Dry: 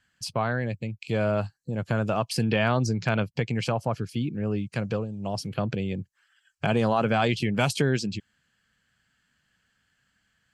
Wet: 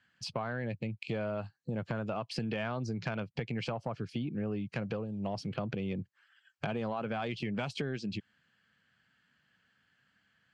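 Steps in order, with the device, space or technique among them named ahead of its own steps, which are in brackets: AM radio (BPF 110–4000 Hz; compressor 8:1, threshold -31 dBFS, peak gain reduction 12.5 dB; soft clip -21.5 dBFS, distortion -24 dB)

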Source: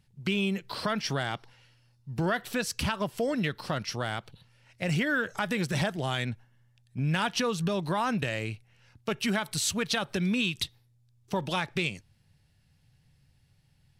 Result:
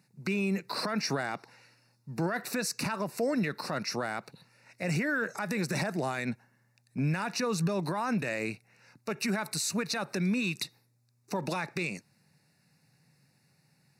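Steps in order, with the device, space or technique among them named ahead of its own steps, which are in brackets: PA system with an anti-feedback notch (HPF 160 Hz 24 dB/oct; Butterworth band-stop 3200 Hz, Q 2.7; limiter -26.5 dBFS, peak gain reduction 11.5 dB); gain +4.5 dB

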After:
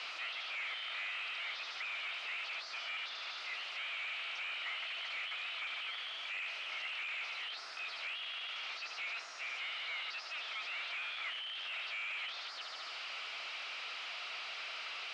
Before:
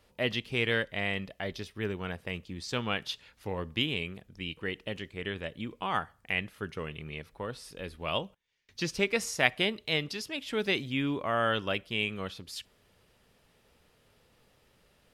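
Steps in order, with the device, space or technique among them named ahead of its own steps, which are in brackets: steep high-pass 2200 Hz 96 dB/oct; thin delay 74 ms, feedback 54%, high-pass 4600 Hz, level -8 dB; home computer beeper (infinite clipping; speaker cabinet 610–4200 Hz, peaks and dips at 670 Hz +7 dB, 1300 Hz +10 dB, 2000 Hz +4 dB, 3500 Hz -4 dB)

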